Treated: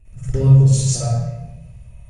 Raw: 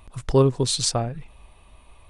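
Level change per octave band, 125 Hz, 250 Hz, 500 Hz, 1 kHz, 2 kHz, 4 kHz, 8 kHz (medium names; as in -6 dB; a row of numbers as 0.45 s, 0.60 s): +12.5 dB, +5.0 dB, -5.0 dB, -4.5 dB, no reading, -6.0 dB, +2.5 dB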